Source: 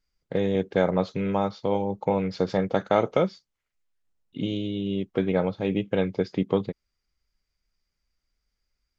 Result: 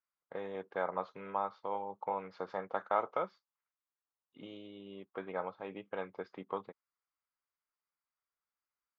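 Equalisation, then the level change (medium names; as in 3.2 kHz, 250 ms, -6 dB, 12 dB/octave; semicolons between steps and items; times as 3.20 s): band-pass filter 1.1 kHz, Q 2.4; -2.0 dB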